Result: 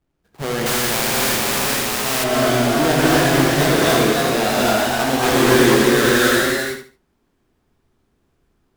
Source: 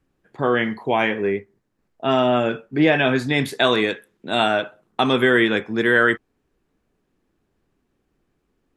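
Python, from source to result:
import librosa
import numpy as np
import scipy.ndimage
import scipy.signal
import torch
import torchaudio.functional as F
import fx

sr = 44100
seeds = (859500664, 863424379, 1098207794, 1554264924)

p1 = fx.halfwave_hold(x, sr)
p2 = p1 + fx.echo_feedback(p1, sr, ms=82, feedback_pct=26, wet_db=-7.5, dry=0)
p3 = fx.rev_gated(p2, sr, seeds[0], gate_ms=310, shape='rising', drr_db=-5.0)
p4 = fx.echo_pitch(p3, sr, ms=515, semitones=1, count=2, db_per_echo=-3.0)
p5 = fx.spectral_comp(p4, sr, ratio=2.0, at=(0.66, 2.24))
y = F.gain(torch.from_numpy(p5), -9.5).numpy()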